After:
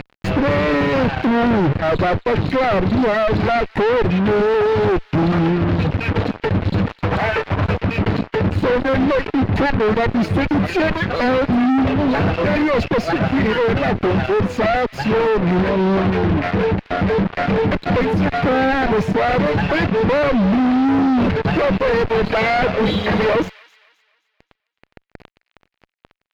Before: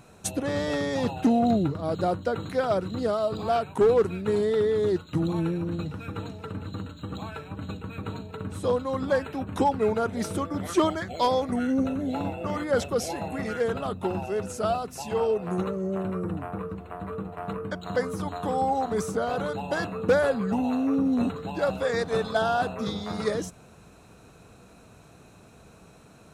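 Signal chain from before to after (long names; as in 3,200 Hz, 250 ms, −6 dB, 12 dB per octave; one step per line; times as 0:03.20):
lower of the sound and its delayed copy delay 0.43 ms
0:22.32–0:24.10: gain on a spectral selection 430–4,000 Hz +8 dB
reverb reduction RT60 1.9 s
0:06.87–0:07.77: octave-band graphic EQ 250/500/1,000/2,000/4,000/8,000 Hz −11/+6/+7/+7/−9/+4 dB
in parallel at +0.5 dB: downward compressor, threshold −40 dBFS, peak gain reduction 22.5 dB
on the sum: fuzz pedal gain 44 dB, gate −41 dBFS
high-frequency loss of the air 320 metres
on a send: delay with a high-pass on its return 262 ms, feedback 37%, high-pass 2,000 Hz, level −17 dB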